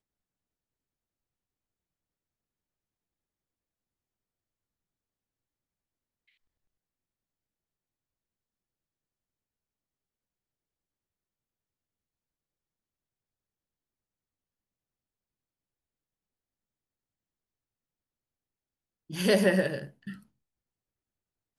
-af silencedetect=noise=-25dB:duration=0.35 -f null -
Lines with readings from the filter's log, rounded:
silence_start: 0.00
silence_end: 19.18 | silence_duration: 19.18
silence_start: 19.75
silence_end: 21.59 | silence_duration: 1.84